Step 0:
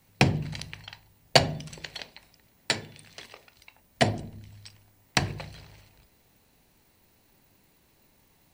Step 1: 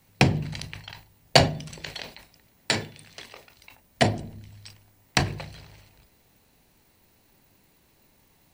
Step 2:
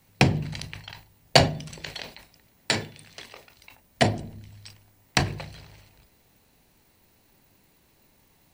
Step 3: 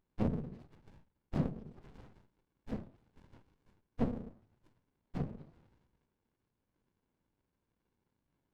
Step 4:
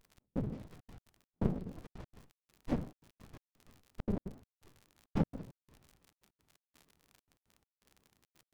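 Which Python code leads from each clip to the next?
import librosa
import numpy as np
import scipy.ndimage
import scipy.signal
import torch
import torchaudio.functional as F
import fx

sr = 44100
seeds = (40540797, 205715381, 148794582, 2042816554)

y1 = fx.sustainer(x, sr, db_per_s=140.0)
y1 = y1 * librosa.db_to_amplitude(1.5)
y2 = y1
y3 = fx.phase_scramble(y2, sr, seeds[0], window_ms=50)
y3 = fx.auto_wah(y3, sr, base_hz=240.0, top_hz=1300.0, q=3.5, full_db=-26.5, direction='down')
y3 = fx.running_max(y3, sr, window=65)
y4 = fx.dmg_crackle(y3, sr, seeds[1], per_s=75.0, level_db=-53.0)
y4 = fx.step_gate(y4, sr, bpm=169, pattern='xx..xxxxx.x.', floor_db=-60.0, edge_ms=4.5)
y4 = fx.vibrato_shape(y4, sr, shape='square', rate_hz=6.0, depth_cents=250.0)
y4 = y4 * librosa.db_to_amplitude(6.5)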